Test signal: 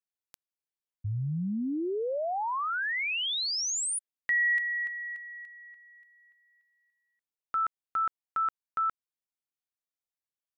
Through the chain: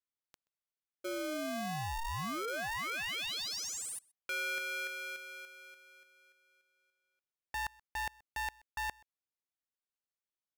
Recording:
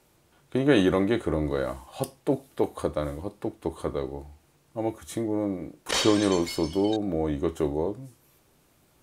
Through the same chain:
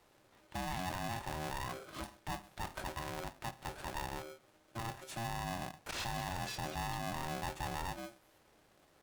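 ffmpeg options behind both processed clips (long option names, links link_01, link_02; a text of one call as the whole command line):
ffmpeg -i in.wav -filter_complex "[0:a]highshelf=frequency=7200:gain=-11,areverse,acompressor=threshold=-33dB:ratio=6:attack=11:release=31:knee=6:detection=peak,areverse,alimiter=level_in=2.5dB:limit=-24dB:level=0:latency=1:release=175,volume=-2.5dB,asplit=2[link_01][link_02];[link_02]adelay=128.3,volume=-25dB,highshelf=frequency=4000:gain=-2.89[link_03];[link_01][link_03]amix=inputs=2:normalize=0,aeval=exprs='val(0)*sgn(sin(2*PI*460*n/s))':channel_layout=same,volume=-3.5dB" out.wav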